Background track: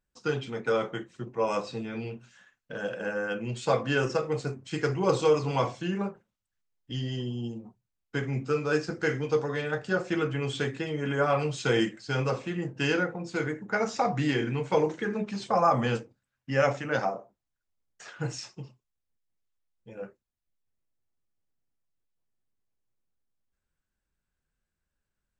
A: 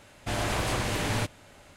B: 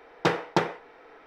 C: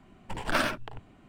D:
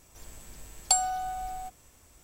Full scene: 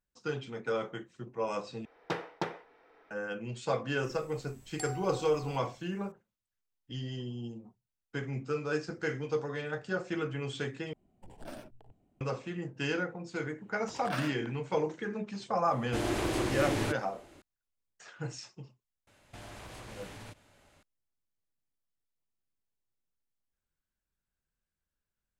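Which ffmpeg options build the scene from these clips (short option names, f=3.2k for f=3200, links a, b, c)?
-filter_complex "[3:a]asplit=2[a][b];[1:a]asplit=2[c][d];[0:a]volume=-6dB[e];[4:a]alimiter=limit=-15.5dB:level=0:latency=1:release=102[f];[a]firequalizer=gain_entry='entry(730,0);entry(1100,-13);entry(8500,-2)':delay=0.05:min_phase=1[g];[b]highpass=130[h];[c]equalizer=f=340:w=2.3:g=14[i];[d]acompressor=threshold=-33dB:ratio=6:attack=3.2:release=140:knee=1:detection=peak[j];[e]asplit=3[k][l][m];[k]atrim=end=1.854[n];[2:a]atrim=end=1.26,asetpts=PTS-STARTPTS,volume=-11dB[o];[l]atrim=start=3.106:end=10.934[p];[g]atrim=end=1.28,asetpts=PTS-STARTPTS,volume=-14.5dB[q];[m]atrim=start=12.206[r];[f]atrim=end=2.23,asetpts=PTS-STARTPTS,volume=-13dB,afade=t=in:d=0.004:c=hsin,afade=t=out:st=2.226:d=0.004:c=hsin,adelay=171549S[s];[h]atrim=end=1.28,asetpts=PTS-STARTPTS,volume=-10dB,afade=t=in:d=0.004:c=hsin,afade=t=out:st=1.276:d=0.004:c=hsin,adelay=13580[t];[i]atrim=end=1.76,asetpts=PTS-STARTPTS,volume=-6dB,afade=t=in:d=0.004:c=hsin,afade=t=out:st=1.756:d=0.004:c=hsin,adelay=15660[u];[j]atrim=end=1.76,asetpts=PTS-STARTPTS,volume=-10.5dB,afade=t=in:d=0.004:c=hsin,afade=t=out:st=1.756:d=0.004:c=hsin,adelay=19070[v];[n][o]acrossfade=d=0.004:c1=hsin:c2=hsin[w];[w][p]acrossfade=d=0.004:c1=hsin:c2=hsin[x];[x][q]acrossfade=d=0.004:c1=hsin:c2=hsin[y];[y][r]acrossfade=d=0.004:c1=hsin:c2=hsin[z];[z][s][t][u][v]amix=inputs=5:normalize=0"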